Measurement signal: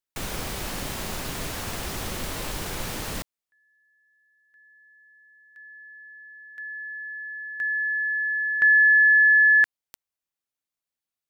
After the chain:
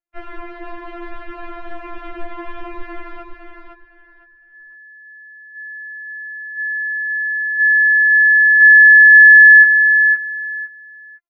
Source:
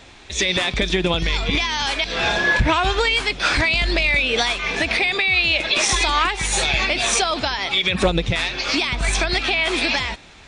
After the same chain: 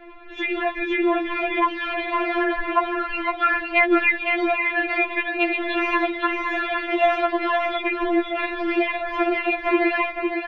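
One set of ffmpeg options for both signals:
ffmpeg -i in.wav -af "lowpass=frequency=2100:width=0.5412,lowpass=frequency=2100:width=1.3066,acompressor=threshold=-20dB:ratio=4:attack=10:release=149:knee=1,aecho=1:1:510|1020|1530:0.531|0.111|0.0234,afftfilt=real='re*4*eq(mod(b,16),0)':imag='im*4*eq(mod(b,16),0)':win_size=2048:overlap=0.75,volume=4.5dB" out.wav

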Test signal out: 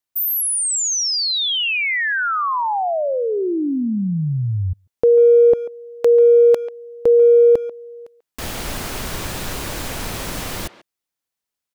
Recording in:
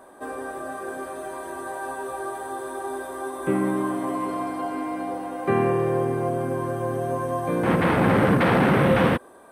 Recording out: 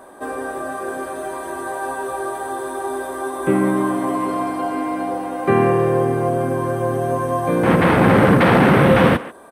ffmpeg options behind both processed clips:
ffmpeg -i in.wav -filter_complex "[0:a]asplit=2[link_01][link_02];[link_02]adelay=140,highpass=300,lowpass=3400,asoftclip=type=hard:threshold=-16dB,volume=-15dB[link_03];[link_01][link_03]amix=inputs=2:normalize=0,volume=6dB" out.wav

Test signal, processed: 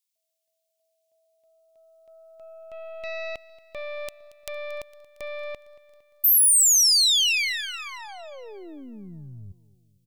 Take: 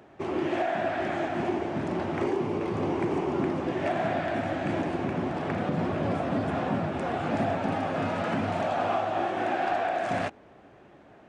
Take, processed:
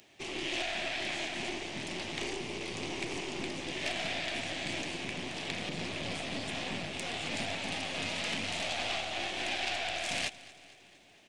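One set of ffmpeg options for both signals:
ffmpeg -i in.wav -af "aeval=exprs='(tanh(15.8*val(0)+0.7)-tanh(0.7))/15.8':channel_layout=same,aecho=1:1:229|458|687|916|1145:0.112|0.0651|0.0377|0.0219|0.0127,aexciter=amount=13.7:drive=1.4:freq=2100,volume=-8dB" out.wav

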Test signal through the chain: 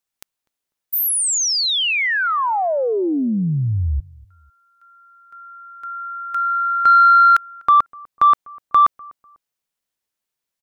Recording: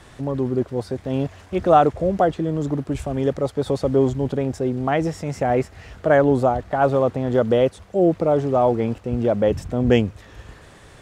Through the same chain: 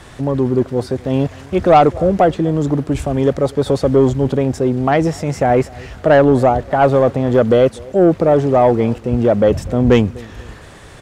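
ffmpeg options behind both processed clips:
ffmpeg -i in.wav -filter_complex "[0:a]asplit=2[link_01][link_02];[link_02]adelay=248,lowpass=frequency=1100:poles=1,volume=-23.5dB,asplit=2[link_03][link_04];[link_04]adelay=248,lowpass=frequency=1100:poles=1,volume=0.35[link_05];[link_01][link_03][link_05]amix=inputs=3:normalize=0,acontrast=85" out.wav

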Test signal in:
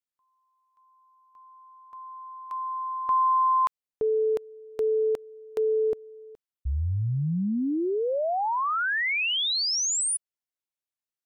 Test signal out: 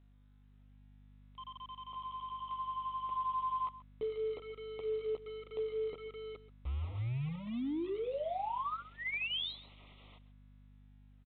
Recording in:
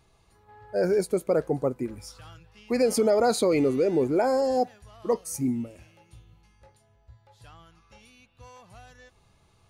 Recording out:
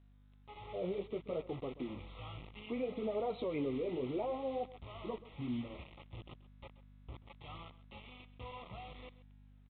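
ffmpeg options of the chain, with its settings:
ffmpeg -i in.wav -filter_complex "[0:a]acompressor=threshold=-45dB:ratio=2.5:attack=1.3:release=108:knee=6:detection=rms,flanger=delay=8.9:depth=8.5:regen=-21:speed=0.64:shape=triangular,acrusher=bits=8:mix=0:aa=0.000001,asuperstop=centerf=1600:order=8:qfactor=2.6,aeval=exprs='val(0)+0.000708*(sin(2*PI*50*n/s)+sin(2*PI*2*50*n/s)/2+sin(2*PI*3*50*n/s)/3+sin(2*PI*4*50*n/s)/4+sin(2*PI*5*50*n/s)/5)':channel_layout=same,asplit=2[link_01][link_02];[link_02]aecho=0:1:132:0.141[link_03];[link_01][link_03]amix=inputs=2:normalize=0,dynaudnorm=framelen=410:gausssize=3:maxgain=4.5dB,volume=1dB" -ar 8000 -c:a pcm_mulaw out.wav

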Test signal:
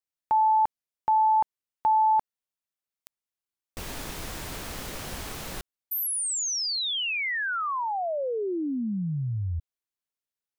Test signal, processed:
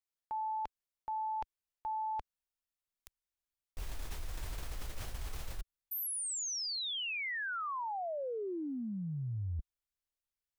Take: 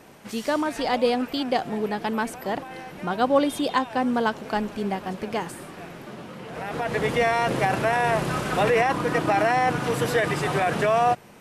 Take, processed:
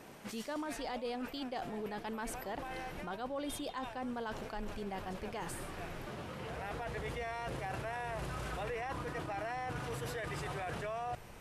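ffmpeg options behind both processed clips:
ffmpeg -i in.wav -af "asubboost=boost=9:cutoff=66,areverse,acompressor=threshold=-32dB:ratio=6:attack=1.7:release=82:knee=1:detection=rms,areverse,volume=-4dB" out.wav

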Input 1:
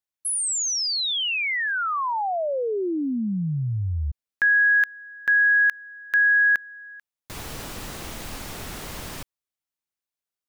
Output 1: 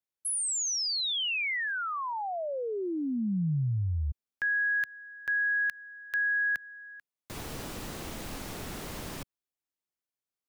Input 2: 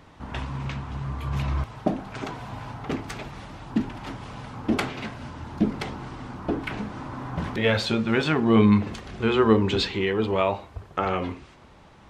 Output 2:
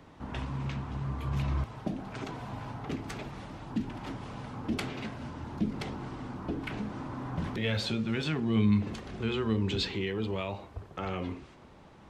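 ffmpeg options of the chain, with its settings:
ffmpeg -i in.wav -filter_complex "[0:a]equalizer=frequency=290:width_type=o:width=2.6:gain=5,acrossover=split=170|2200[link_01][link_02][link_03];[link_02]acompressor=threshold=-28dB:ratio=3:attack=0.1:release=205:knee=2.83:detection=peak[link_04];[link_01][link_04][link_03]amix=inputs=3:normalize=0,volume=-5.5dB" out.wav

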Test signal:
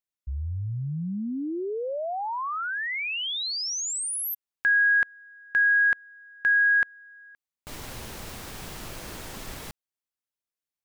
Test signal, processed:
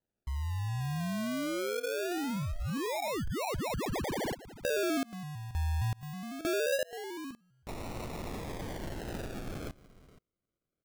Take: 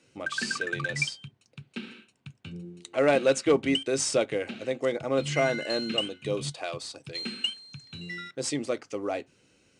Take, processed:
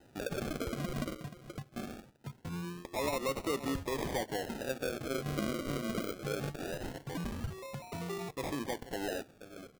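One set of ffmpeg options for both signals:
ffmpeg -i in.wav -af "aecho=1:1:478:0.0841,acompressor=threshold=-36dB:ratio=3:attack=1.3:release=161:knee=6:detection=peak,acrusher=samples=39:mix=1:aa=0.000001:lfo=1:lforange=23.4:lforate=0.22,volume=2.5dB" out.wav

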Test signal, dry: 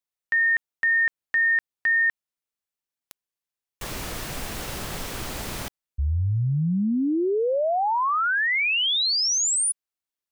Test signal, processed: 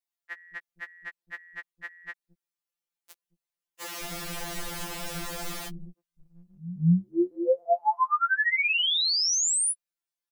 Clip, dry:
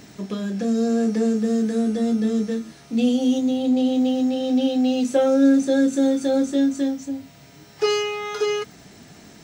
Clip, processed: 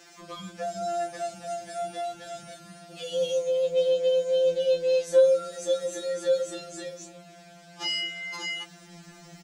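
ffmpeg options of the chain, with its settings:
ffmpeg -i in.wav -filter_complex "[0:a]acrossover=split=280[link_01][link_02];[link_01]adelay=220[link_03];[link_03][link_02]amix=inputs=2:normalize=0,afftfilt=real='re*2.83*eq(mod(b,8),0)':imag='im*2.83*eq(mod(b,8),0)':win_size=2048:overlap=0.75" out.wav

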